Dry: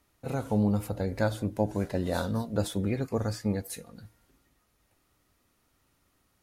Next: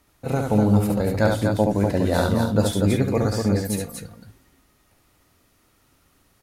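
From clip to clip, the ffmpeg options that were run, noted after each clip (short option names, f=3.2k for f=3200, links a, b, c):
-af "aecho=1:1:69.97|242:0.631|0.562,volume=7dB"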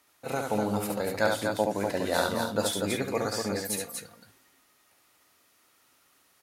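-af "highpass=f=840:p=1"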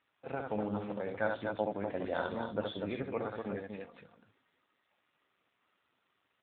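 -af "volume=-6.5dB" -ar 8000 -c:a libopencore_amrnb -b:a 7400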